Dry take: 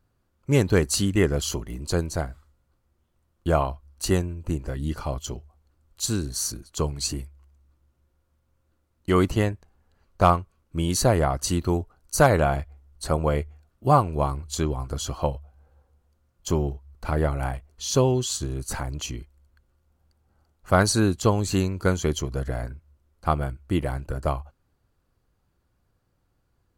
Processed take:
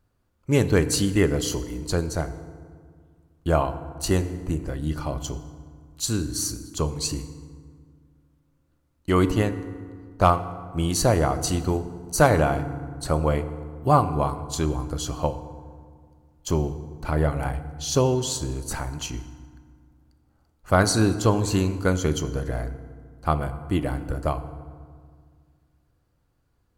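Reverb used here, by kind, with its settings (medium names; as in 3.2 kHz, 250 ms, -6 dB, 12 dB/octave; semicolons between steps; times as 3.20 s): FDN reverb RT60 1.9 s, low-frequency decay 1.35×, high-frequency decay 0.55×, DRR 10.5 dB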